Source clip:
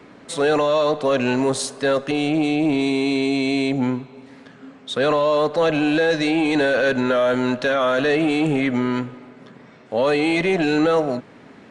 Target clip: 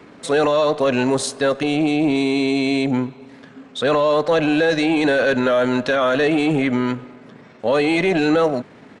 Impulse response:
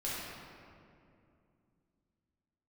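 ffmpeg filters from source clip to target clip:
-af "atempo=1.3,volume=1.5dB"

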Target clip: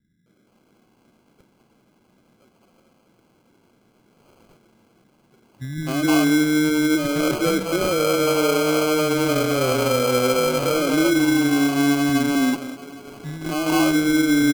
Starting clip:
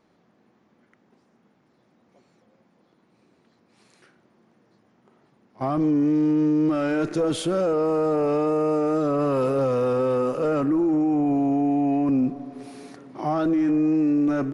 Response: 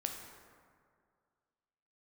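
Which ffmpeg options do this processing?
-filter_complex "[0:a]acrossover=split=210|630[link_01][link_02][link_03];[link_02]adelay=260[link_04];[link_03]adelay=470[link_05];[link_01][link_04][link_05]amix=inputs=3:normalize=0,asplit=2[link_06][link_07];[1:a]atrim=start_sample=2205,adelay=120[link_08];[link_07][link_08]afir=irnorm=-1:irlink=0,volume=-15.5dB[link_09];[link_06][link_09]amix=inputs=2:normalize=0,acrusher=samples=24:mix=1:aa=0.000001,volume=4.5dB"

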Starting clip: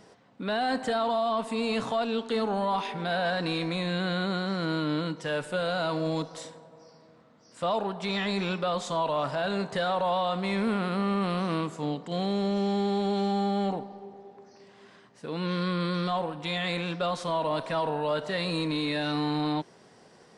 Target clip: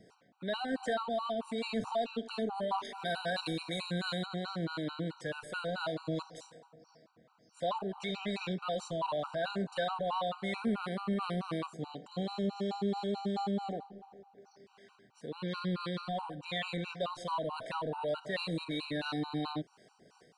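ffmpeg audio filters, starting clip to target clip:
ffmpeg -i in.wav -filter_complex "[0:a]acrossover=split=450[link_01][link_02];[link_01]aeval=exprs='val(0)*(1-0.5/2+0.5/2*cos(2*PI*2.8*n/s))':channel_layout=same[link_03];[link_02]aeval=exprs='val(0)*(1-0.5/2-0.5/2*cos(2*PI*2.8*n/s))':channel_layout=same[link_04];[link_03][link_04]amix=inputs=2:normalize=0,asettb=1/sr,asplit=3[link_05][link_06][link_07];[link_05]atrim=end=2.844[link_08];[link_06]atrim=start=2.84:end=4.26,asetpts=PTS-STARTPTS,afade=type=in:duration=0.004:curve=qsin,afade=type=out:start_time=1.416:duration=0.004:curve=qsin,aemphasis=mode=production:type=50fm[link_09];[link_07]atrim=start=4.256[link_10];[link_08][link_09]acrossfade=duration=0.004:curve1=hsin:curve2=qsin[link_11];[link_11][link_10]acrossfade=duration=0.004:curve1=qsin:curve2=hsin,afftfilt=real='re*gt(sin(2*PI*4.6*pts/sr)*(1-2*mod(floor(b*sr/1024/770),2)),0)':imag='im*gt(sin(2*PI*4.6*pts/sr)*(1-2*mod(floor(b*sr/1024/770),2)),0)':win_size=1024:overlap=0.75,volume=-2dB" out.wav

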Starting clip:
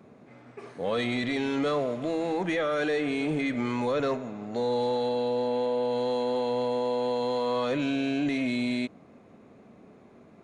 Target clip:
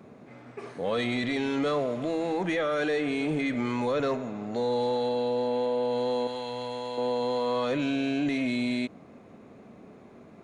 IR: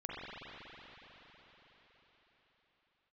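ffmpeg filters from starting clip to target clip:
-filter_complex "[0:a]asettb=1/sr,asplit=3[link_01][link_02][link_03];[link_01]atrim=end=6.274[link_04];[link_02]atrim=start=6.27:end=6.98,asetpts=PTS-STARTPTS,afade=type=in:duration=0.004:curve=qsin,afade=type=out:start_time=0.706:duration=0.004:curve=qsin,equalizer=frequency=360:width_type=o:width=2.7:gain=-11[link_05];[link_03]atrim=start=6.976[link_06];[link_04][link_05]acrossfade=duration=0.004:curve1=hsin:curve2=qsin[link_07];[link_07][link_06]acrossfade=duration=0.004:curve1=qsin:curve2=hsin,asplit=2[link_08][link_09];[link_09]alimiter=level_in=6.5dB:limit=-24dB:level=0:latency=1,volume=-6.5dB,volume=-2dB[link_10];[link_08][link_10]amix=inputs=2:normalize=0,volume=-2dB"

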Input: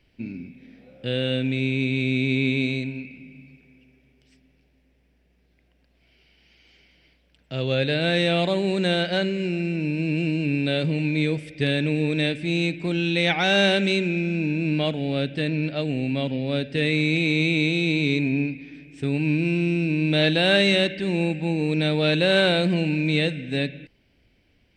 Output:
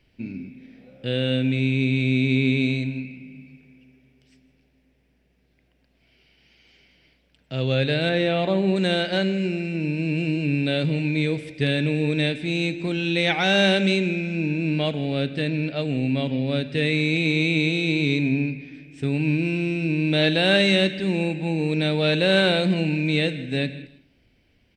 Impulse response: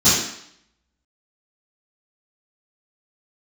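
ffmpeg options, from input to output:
-filter_complex "[0:a]asettb=1/sr,asplit=3[link_01][link_02][link_03];[link_01]atrim=end=8.094[link_04];[link_02]atrim=start=8.09:end=8.76,asetpts=PTS-STARTPTS,afade=type=in:duration=0.004:curve=qsin,afade=type=out:start_time=0.666:duration=0.004:curve=qsin,aemphasis=mode=reproduction:type=75fm[link_05];[link_03]atrim=start=8.756[link_06];[link_04][link_05]acrossfade=duration=0.004:curve1=hsin:curve2=qsin[link_07];[link_07][link_06]acrossfade=duration=0.004:curve1=qsin:curve2=hsin,aecho=1:1:159|318:0.112|0.0258,asplit=2[link_08][link_09];[1:a]atrim=start_sample=2205[link_10];[link_09][link_10]afir=irnorm=-1:irlink=0,volume=-38.5dB[link_11];[link_08][link_11]amix=inputs=2:normalize=0"

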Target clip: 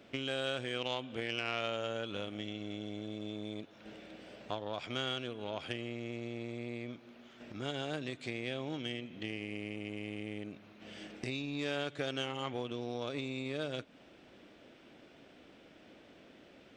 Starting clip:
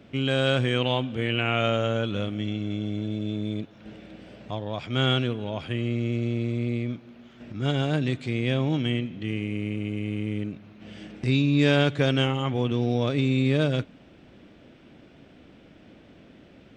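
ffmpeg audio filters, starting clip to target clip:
ffmpeg -i in.wav -af "acompressor=threshold=-30dB:ratio=5,aeval=exprs='0.106*(cos(1*acos(clip(val(0)/0.106,-1,1)))-cos(1*PI/2))+0.0119*(cos(3*acos(clip(val(0)/0.106,-1,1)))-cos(3*PI/2))+0.000668*(cos(7*acos(clip(val(0)/0.106,-1,1)))-cos(7*PI/2))':channel_layout=same,bass=frequency=250:gain=-11,treble=frequency=4000:gain=3,volume=1dB" out.wav

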